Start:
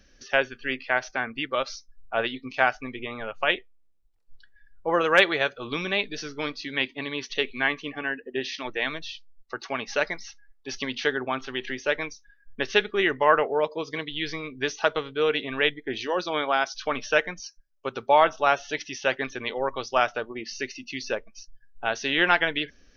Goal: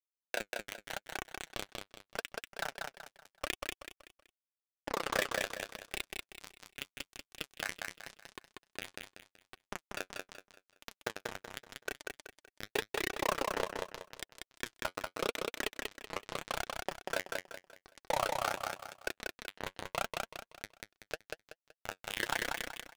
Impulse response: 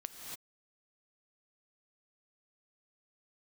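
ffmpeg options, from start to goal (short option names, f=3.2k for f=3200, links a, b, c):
-filter_complex "[0:a]volume=18.5dB,asoftclip=hard,volume=-18.5dB,tremolo=f=32:d=0.947,acrusher=bits=2:mix=0:aa=0.5,flanger=delay=2.6:depth=8.4:regen=41:speed=0.84:shape=sinusoidal,asplit=2[a][b];[b]aecho=0:1:189|378|567|756:0.668|0.227|0.0773|0.0263[c];[a][c]amix=inputs=2:normalize=0,volume=13dB"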